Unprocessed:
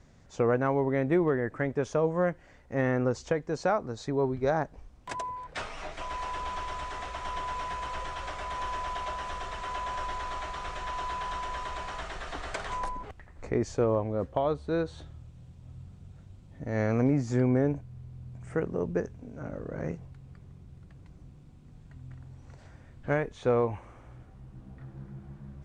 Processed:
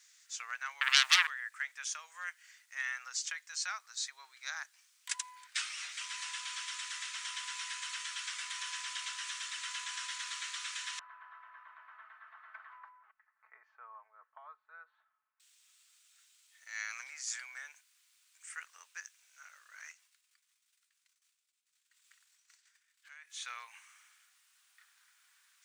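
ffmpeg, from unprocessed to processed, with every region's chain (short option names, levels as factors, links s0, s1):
-filter_complex "[0:a]asettb=1/sr,asplit=3[s0][s1][s2];[s0]atrim=end=0.814[s3];[s1]atrim=start=0.81:end=1.27,asetpts=PTS-STARTPTS,afade=t=in:d=0.004:c=qsin,afade=t=out:st=0.456:d=0.004:c=qsin,bandreject=f=50:t=h:w=6,bandreject=f=100:t=h:w=6,bandreject=f=150:t=h:w=6,bandreject=f=200:t=h:w=6,bandreject=f=250:t=h:w=6,bandreject=f=300:t=h:w=6,bandreject=f=350:t=h:w=6,aeval=exprs='0.158*sin(PI/2*3.98*val(0)/0.158)':c=same[s4];[s2]atrim=start=1.266[s5];[s3][s4]acrossfade=d=0.004:c1=hsin:c2=qsin[s6];[s6][s5]acrossfade=d=0.004:c1=qsin:c2=hsin,asettb=1/sr,asplit=3[s7][s8][s9];[s7]atrim=end=10.994[s10];[s8]atrim=start=10.99:end=15.4,asetpts=PTS-STARTPTS,afade=t=in:d=0.004:c=qsin,afade=t=out:st=4.406:d=0.004:c=qsin,lowpass=f=1200:w=0.5412,lowpass=f=1200:w=1.3066,aecho=1:1:4.6:0.54,atrim=end_sample=194481[s11];[s9]atrim=start=15.396[s12];[s10][s11]acrossfade=d=0.004:c1=hsin:c2=qsin[s13];[s13][s12]acrossfade=d=0.004:c1=qsin:c2=hsin,asettb=1/sr,asplit=3[s14][s15][s16];[s14]atrim=end=19.924[s17];[s15]atrim=start=19.92:end=23.3,asetpts=PTS-STARTPTS,afade=t=in:d=0.004:c=qsin,afade=t=out:st=3.376:d=0.004:c=qsin,agate=range=0.0224:threshold=0.00708:ratio=3:release=100:detection=peak,acompressor=threshold=0.01:ratio=6:attack=3.2:release=140:knee=1:detection=peak[s18];[s16]atrim=start=23.296[s19];[s17][s18]acrossfade=d=0.004:c1=hsin:c2=qsin[s20];[s20][s19]acrossfade=d=0.004:c1=qsin:c2=hsin,highpass=f=1400:w=0.5412,highpass=f=1400:w=1.3066,aderivative,volume=3.98"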